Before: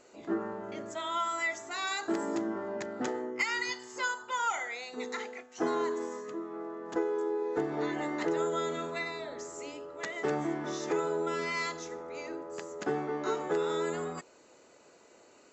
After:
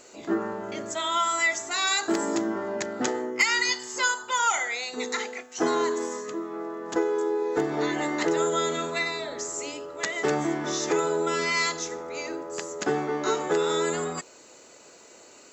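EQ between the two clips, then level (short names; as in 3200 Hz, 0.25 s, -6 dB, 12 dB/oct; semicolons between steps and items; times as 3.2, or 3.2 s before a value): high shelf 3300 Hz +10 dB; +5.5 dB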